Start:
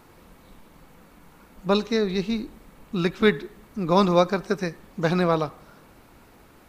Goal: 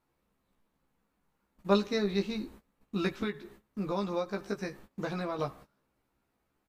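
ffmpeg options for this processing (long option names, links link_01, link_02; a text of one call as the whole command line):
ffmpeg -i in.wav -filter_complex "[0:a]agate=range=-20dB:threshold=-43dB:ratio=16:detection=peak,asettb=1/sr,asplit=3[link_01][link_02][link_03];[link_01]atrim=end=3.134[link_04];[link_02]atrim=start=3.13:end=5.39,asetpts=PTS-STARTPTS,afade=type=in:duration=0.004:curve=qsin,afade=type=out:start_time=2.256:duration=0.004:curve=qsin,acompressor=threshold=-24dB:ratio=6[link_05];[link_03]atrim=start=5.386[link_06];[link_04][link_05]acrossfade=duration=0.004:curve1=hsin:curve2=qsin[link_07];[link_07][link_06]acrossfade=duration=0.004:curve1=qsin:curve2=hsin,asplit=2[link_08][link_09];[link_09]adelay=15,volume=-3dB[link_10];[link_08][link_10]amix=inputs=2:normalize=0,volume=-7.5dB" out.wav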